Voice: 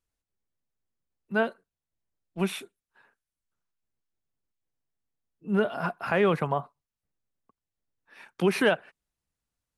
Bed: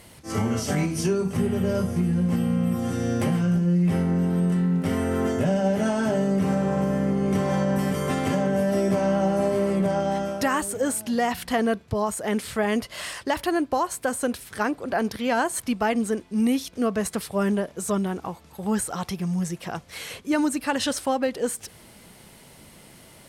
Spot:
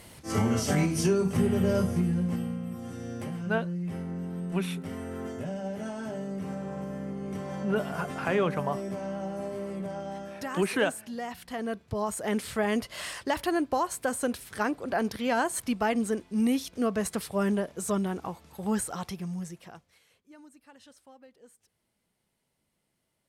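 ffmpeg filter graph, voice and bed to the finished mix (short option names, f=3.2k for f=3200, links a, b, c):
-filter_complex "[0:a]adelay=2150,volume=-3.5dB[a];[1:a]volume=8dB,afade=t=out:st=1.79:d=0.82:silence=0.266073,afade=t=in:st=11.53:d=0.7:silence=0.354813,afade=t=out:st=18.7:d=1.3:silence=0.0501187[b];[a][b]amix=inputs=2:normalize=0"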